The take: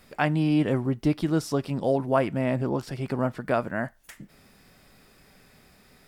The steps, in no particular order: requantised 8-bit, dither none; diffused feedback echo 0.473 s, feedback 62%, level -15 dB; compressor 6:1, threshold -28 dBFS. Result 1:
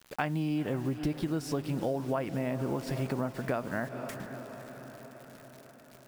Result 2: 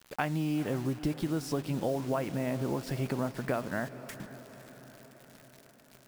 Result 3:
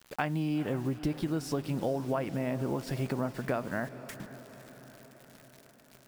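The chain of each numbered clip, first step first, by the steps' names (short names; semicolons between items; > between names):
requantised > diffused feedback echo > compressor; compressor > requantised > diffused feedback echo; requantised > compressor > diffused feedback echo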